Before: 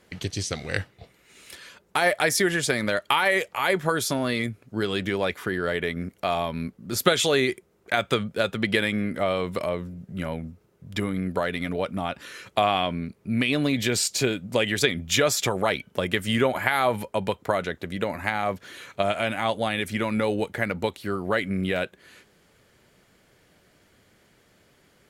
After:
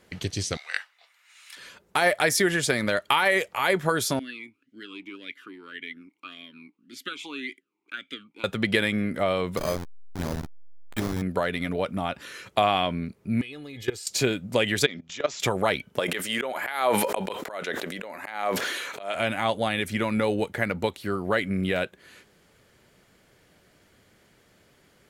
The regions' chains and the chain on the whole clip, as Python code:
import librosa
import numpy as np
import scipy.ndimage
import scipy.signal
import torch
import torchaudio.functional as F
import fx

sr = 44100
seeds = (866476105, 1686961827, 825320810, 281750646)

y = fx.chain(x, sr, fx.highpass(hz=970.0, slope=24),
    fx.peak_eq(hz=13000.0, db=-5.5, octaves=1.2), at=(0.57, 1.57))
y = fx.chain(y, sr, fx.tilt_eq(slope=3.5),
    fx.vowel_sweep(vowels='i-u', hz=1.8), at=(4.19, 8.44))
y = fx.chain(y, sr, fx.delta_hold(step_db=-25.5),
    fx.doubler(ms=13.0, db=-13.5),
    fx.resample_bad(factor=8, down='filtered', up='hold'), at=(9.57, 11.22))
y = fx.chain(y, sr, fx.comb(ms=2.4, depth=0.67),
    fx.level_steps(step_db=20), at=(13.41, 14.07))
y = fx.chain(y, sr, fx.highpass(hz=210.0, slope=12),
    fx.level_steps(step_db=19),
    fx.resample_bad(factor=3, down='none', up='filtered'), at=(14.86, 15.4))
y = fx.chain(y, sr, fx.highpass(hz=370.0, slope=12),
    fx.auto_swell(attack_ms=210.0),
    fx.sustainer(db_per_s=29.0), at=(15.99, 19.15))